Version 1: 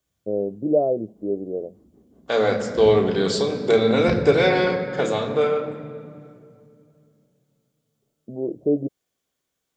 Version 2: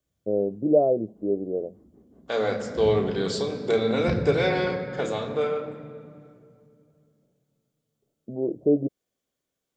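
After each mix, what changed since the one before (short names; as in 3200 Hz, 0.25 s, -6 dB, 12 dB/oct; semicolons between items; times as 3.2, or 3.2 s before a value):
second voice -5.5 dB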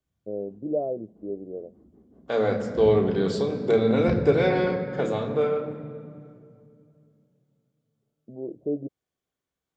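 first voice -7.5 dB; second voice: add low shelf 350 Hz +6 dB; master: add high shelf 3300 Hz -8.5 dB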